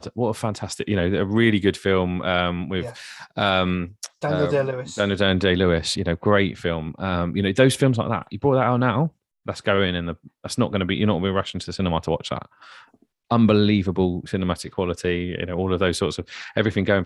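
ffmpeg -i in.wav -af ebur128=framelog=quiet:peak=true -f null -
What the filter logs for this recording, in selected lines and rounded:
Integrated loudness:
  I:         -22.3 LUFS
  Threshold: -32.6 LUFS
Loudness range:
  LRA:         3.0 LU
  Threshold: -42.5 LUFS
  LRA low:   -24.1 LUFS
  LRA high:  -21.1 LUFS
True peak:
  Peak:       -3.4 dBFS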